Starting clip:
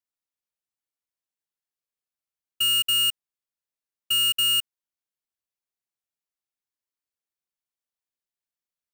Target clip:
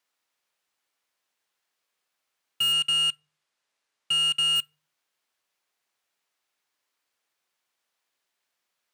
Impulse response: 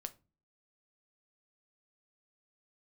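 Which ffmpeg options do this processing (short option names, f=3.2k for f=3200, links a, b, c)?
-filter_complex "[0:a]asplit=2[a][b];[b]highpass=f=720:p=1,volume=22dB,asoftclip=type=tanh:threshold=-21dB[c];[a][c]amix=inputs=2:normalize=0,lowpass=f=3.2k:p=1,volume=-6dB,asettb=1/sr,asplit=3[d][e][f];[d]atrim=end=2.724[g];[e]atrim=start=2.72:end=4.56,asetpts=PTS-STARTPTS,afade=t=in:d=0.004:c=qsin,afade=t=out:st=1.836:d=0.004:c=qsin,lowpass=9.9k[h];[f]atrim=start=4.556[i];[g][h]acrossfade=d=0.004:c1=hsin:c2=qsin[j];[j][i]acrossfade=d=0.004:c1=qsin:c2=hsin,asplit=2[k][l];[1:a]atrim=start_sample=2205,afade=t=out:st=0.36:d=0.01,atrim=end_sample=16317,asetrate=40131,aresample=44100[m];[l][m]afir=irnorm=-1:irlink=0,volume=-8dB[n];[k][n]amix=inputs=2:normalize=0"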